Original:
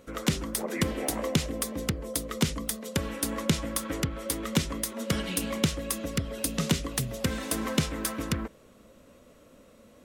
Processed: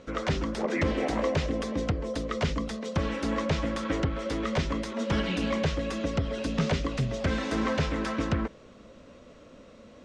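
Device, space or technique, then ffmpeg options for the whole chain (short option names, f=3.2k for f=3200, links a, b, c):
synthesiser wavefolder: -filter_complex "[0:a]aeval=exprs='0.075*(abs(mod(val(0)/0.075+3,4)-2)-1)':c=same,lowpass=f=6.1k:w=0.5412,lowpass=f=6.1k:w=1.3066,acrossover=split=2800[a][b];[b]acompressor=threshold=-45dB:ratio=4:attack=1:release=60[c];[a][c]amix=inputs=2:normalize=0,volume=4.5dB"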